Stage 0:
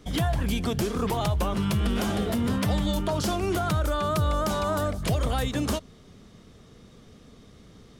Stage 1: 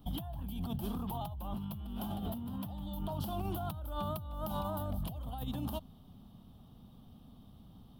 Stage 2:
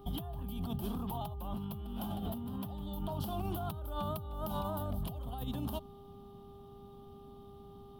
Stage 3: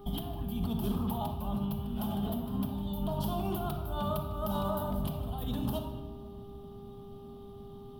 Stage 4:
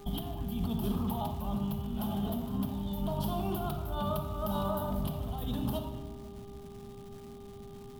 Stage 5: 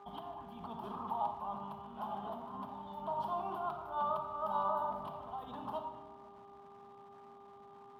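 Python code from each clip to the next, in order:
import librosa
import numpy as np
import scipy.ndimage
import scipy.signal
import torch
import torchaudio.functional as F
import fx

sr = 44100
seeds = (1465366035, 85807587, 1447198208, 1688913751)

y1 = fx.curve_eq(x, sr, hz=(250.0, 440.0, 820.0, 2100.0, 3100.0, 6800.0, 15000.0), db=(0, -15, 3, -22, -3, -21, 12))
y1 = fx.over_compress(y1, sr, threshold_db=-31.0, ratio=-1.0)
y1 = F.gain(torch.from_numpy(y1), -7.5).numpy()
y2 = fx.dmg_buzz(y1, sr, base_hz=400.0, harmonics=3, level_db=-55.0, tilt_db=-7, odd_only=False)
y3 = fx.room_shoebox(y2, sr, seeds[0], volume_m3=1500.0, walls='mixed', distance_m=1.4)
y3 = F.gain(torch.from_numpy(y3), 2.0).numpy()
y4 = fx.dmg_crackle(y3, sr, seeds[1], per_s=450.0, level_db=-47.0)
y5 = fx.bandpass_q(y4, sr, hz=1000.0, q=2.9)
y5 = F.gain(torch.from_numpy(y5), 6.0).numpy()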